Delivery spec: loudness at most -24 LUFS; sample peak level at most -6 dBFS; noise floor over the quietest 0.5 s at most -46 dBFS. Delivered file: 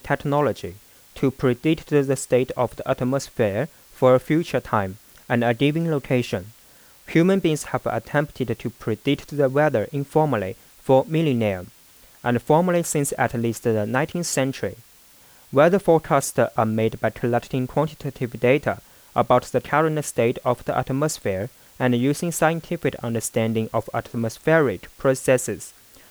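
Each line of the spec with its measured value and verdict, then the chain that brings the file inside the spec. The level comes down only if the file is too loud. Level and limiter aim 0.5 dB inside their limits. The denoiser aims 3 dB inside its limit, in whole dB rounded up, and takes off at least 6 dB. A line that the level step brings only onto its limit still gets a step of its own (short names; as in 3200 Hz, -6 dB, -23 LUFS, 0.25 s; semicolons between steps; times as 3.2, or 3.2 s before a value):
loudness -22.0 LUFS: fail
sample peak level -5.5 dBFS: fail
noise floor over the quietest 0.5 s -51 dBFS: OK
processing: gain -2.5 dB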